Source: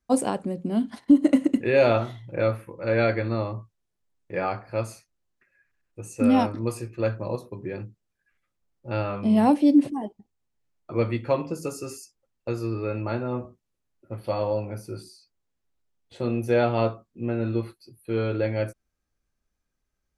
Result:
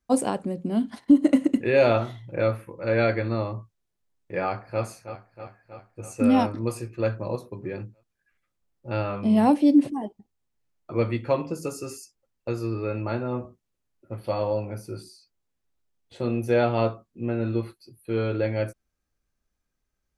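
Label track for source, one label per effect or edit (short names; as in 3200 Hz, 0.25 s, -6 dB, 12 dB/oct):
4.430000	4.830000	echo throw 0.32 s, feedback 70%, level -11.5 dB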